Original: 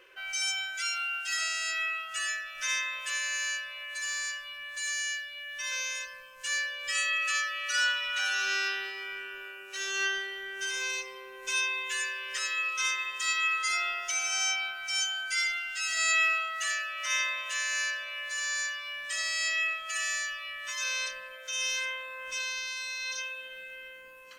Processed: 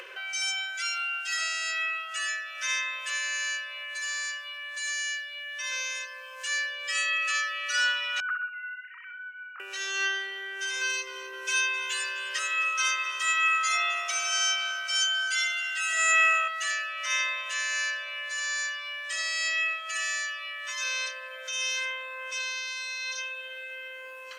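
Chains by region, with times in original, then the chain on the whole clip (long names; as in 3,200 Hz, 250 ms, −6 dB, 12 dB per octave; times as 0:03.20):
0:08.20–0:09.60: three sine waves on the formant tracks + resonant band-pass 1,300 Hz, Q 6.4 + flutter between parallel walls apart 10.8 metres, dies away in 0.56 s
0:10.81–0:16.48: comb filter 3.2 ms, depth 84% + echo with shifted repeats 260 ms, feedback 32%, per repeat −71 Hz, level −16.5 dB
whole clip: high-pass filter 400 Hz 24 dB per octave; high-shelf EQ 11,000 Hz −11 dB; upward compression, threshold −36 dBFS; level +2 dB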